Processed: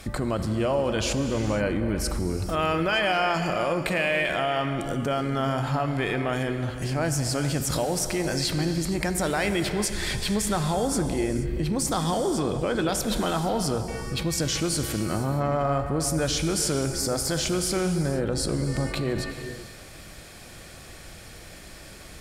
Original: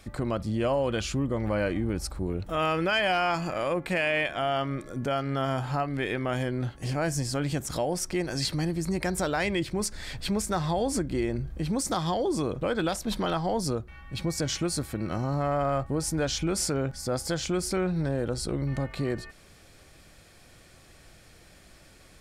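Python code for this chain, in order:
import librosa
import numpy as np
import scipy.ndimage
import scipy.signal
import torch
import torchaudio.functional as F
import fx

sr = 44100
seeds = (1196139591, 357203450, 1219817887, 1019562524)

p1 = fx.high_shelf(x, sr, hz=12000.0, db=4.5)
p2 = fx.cheby_harmonics(p1, sr, harmonics=(6,), levels_db=(-45,), full_scale_db=-14.5)
p3 = fx.over_compress(p2, sr, threshold_db=-37.0, ratio=-1.0)
p4 = p2 + F.gain(torch.from_numpy(p3), -2.0).numpy()
y = fx.rev_gated(p4, sr, seeds[0], gate_ms=500, shape='flat', drr_db=7.0)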